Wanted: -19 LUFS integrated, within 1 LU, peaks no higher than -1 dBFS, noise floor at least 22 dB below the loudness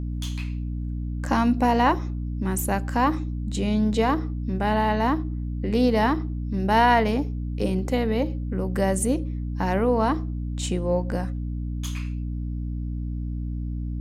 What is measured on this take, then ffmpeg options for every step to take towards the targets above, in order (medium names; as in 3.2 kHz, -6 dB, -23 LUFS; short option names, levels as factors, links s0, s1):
hum 60 Hz; highest harmonic 300 Hz; hum level -26 dBFS; loudness -25.0 LUFS; peak level -7.5 dBFS; loudness target -19.0 LUFS
-> -af "bandreject=f=60:t=h:w=6,bandreject=f=120:t=h:w=6,bandreject=f=180:t=h:w=6,bandreject=f=240:t=h:w=6,bandreject=f=300:t=h:w=6"
-af "volume=2"